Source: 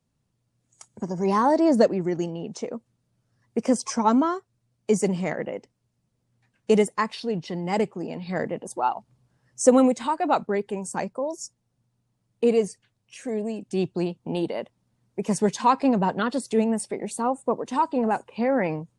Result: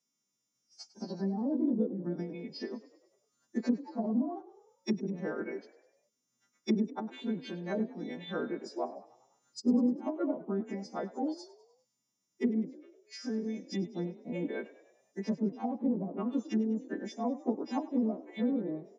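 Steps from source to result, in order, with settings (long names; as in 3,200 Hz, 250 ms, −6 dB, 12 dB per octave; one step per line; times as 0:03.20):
every partial snapped to a pitch grid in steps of 2 semitones
treble cut that deepens with the level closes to 370 Hz, closed at −18.5 dBFS
formants moved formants −4 semitones
four-pole ladder high-pass 200 Hz, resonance 40%
echo with shifted repeats 100 ms, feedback 54%, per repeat +40 Hz, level −18 dB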